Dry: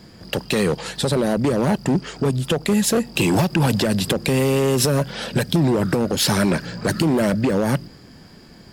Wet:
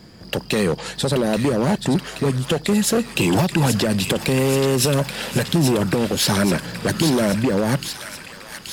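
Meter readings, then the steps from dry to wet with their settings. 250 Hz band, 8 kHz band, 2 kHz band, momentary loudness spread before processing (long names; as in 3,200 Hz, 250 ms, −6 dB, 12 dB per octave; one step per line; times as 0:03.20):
0.0 dB, +1.5 dB, +1.0 dB, 5 LU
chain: delay with a high-pass on its return 829 ms, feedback 65%, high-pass 1,500 Hz, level −6 dB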